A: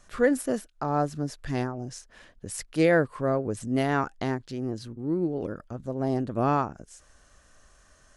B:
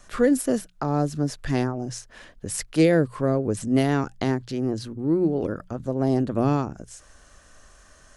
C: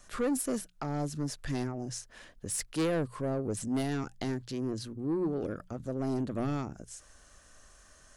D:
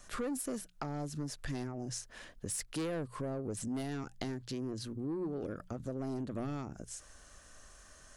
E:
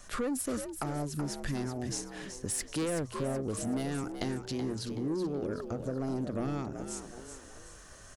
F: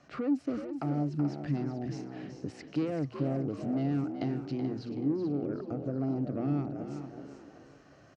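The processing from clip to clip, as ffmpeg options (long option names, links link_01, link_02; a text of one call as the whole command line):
ffmpeg -i in.wav -filter_complex "[0:a]acrossover=split=460|3000[link_01][link_02][link_03];[link_02]acompressor=threshold=-34dB:ratio=6[link_04];[link_01][link_04][link_03]amix=inputs=3:normalize=0,bandreject=frequency=60:width_type=h:width=6,bandreject=frequency=120:width_type=h:width=6,bandreject=frequency=180:width_type=h:width=6,volume=6dB" out.wav
ffmpeg -i in.wav -af "highshelf=frequency=5100:gain=5.5,asoftclip=type=tanh:threshold=-18.5dB,volume=-6.5dB" out.wav
ffmpeg -i in.wav -af "acompressor=threshold=-37dB:ratio=4,volume=1dB" out.wav
ffmpeg -i in.wav -filter_complex "[0:a]asplit=5[link_01][link_02][link_03][link_04][link_05];[link_02]adelay=377,afreqshift=65,volume=-9dB[link_06];[link_03]adelay=754,afreqshift=130,volume=-17dB[link_07];[link_04]adelay=1131,afreqshift=195,volume=-24.9dB[link_08];[link_05]adelay=1508,afreqshift=260,volume=-32.9dB[link_09];[link_01][link_06][link_07][link_08][link_09]amix=inputs=5:normalize=0,volume=4dB" out.wav
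ffmpeg -i in.wav -af "highpass=110,equalizer=frequency=140:width_type=q:width=4:gain=10,equalizer=frequency=290:width_type=q:width=4:gain=10,equalizer=frequency=710:width_type=q:width=4:gain=5,equalizer=frequency=1000:width_type=q:width=4:gain=-5,equalizer=frequency=1700:width_type=q:width=4:gain=-5,equalizer=frequency=3500:width_type=q:width=4:gain=-10,lowpass=frequency=4200:width=0.5412,lowpass=frequency=4200:width=1.3066,aecho=1:1:433:0.282,volume=-3.5dB" out.wav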